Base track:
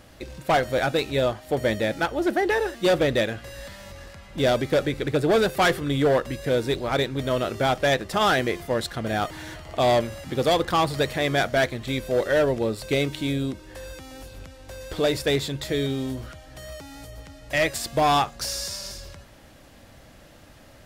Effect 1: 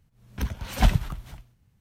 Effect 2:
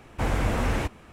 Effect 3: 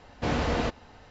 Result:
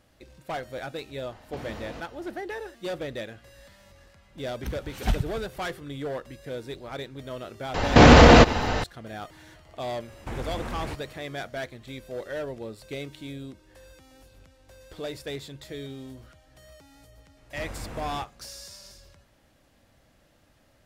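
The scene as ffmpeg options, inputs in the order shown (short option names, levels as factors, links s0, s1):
-filter_complex "[3:a]asplit=2[s0][s1];[2:a]asplit=2[s2][s3];[0:a]volume=0.237[s4];[s0]acompressor=threshold=0.0178:ratio=6:attack=3.2:release=140:knee=1:detection=peak[s5];[1:a]bandreject=f=1000:w=13[s6];[s1]alimiter=level_in=23.7:limit=0.891:release=50:level=0:latency=1[s7];[s2]acompressor=threshold=0.0447:ratio=6:attack=3.2:release=140:knee=1:detection=peak[s8];[s5]atrim=end=1.1,asetpts=PTS-STARTPTS,volume=0.794,afade=t=in:d=0.004:c=hsin,afade=t=out:st=1.096:d=0.004:c=hsin,adelay=1310[s9];[s6]atrim=end=1.8,asetpts=PTS-STARTPTS,volume=0.531,afade=t=in:d=0.004:c=hsin,afade=t=out:st=1.796:d=0.004:c=hsin,adelay=187425S[s10];[s7]atrim=end=1.1,asetpts=PTS-STARTPTS,volume=0.794,afade=t=in:d=0.004:c=hsin,afade=t=out:st=1.096:d=0.004:c=hsin,adelay=7740[s11];[s8]atrim=end=1.12,asetpts=PTS-STARTPTS,volume=0.708,afade=t=in:d=0.004:c=hsin,afade=t=out:st=1.116:d=0.004:c=hsin,adelay=10080[s12];[s3]atrim=end=1.12,asetpts=PTS-STARTPTS,volume=0.211,afade=t=in:d=0.004:c=hsin,afade=t=out:st=1.116:d=0.004:c=hsin,adelay=17370[s13];[s4][s9][s10][s11][s12][s13]amix=inputs=6:normalize=0"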